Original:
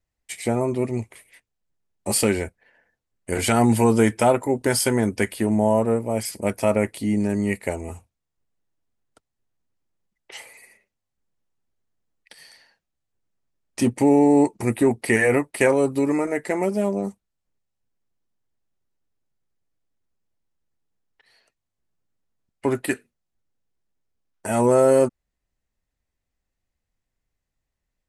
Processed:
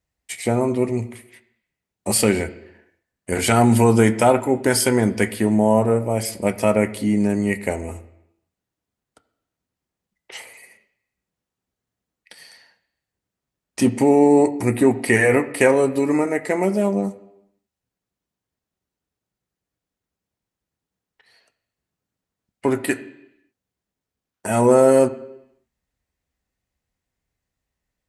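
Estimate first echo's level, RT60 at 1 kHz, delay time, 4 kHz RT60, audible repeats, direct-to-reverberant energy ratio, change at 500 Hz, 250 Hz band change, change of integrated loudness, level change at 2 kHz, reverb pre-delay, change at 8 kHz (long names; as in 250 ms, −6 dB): no echo audible, 0.85 s, no echo audible, 0.90 s, no echo audible, 9.5 dB, +3.0 dB, +2.5 dB, +2.5 dB, +3.0 dB, 3 ms, +2.5 dB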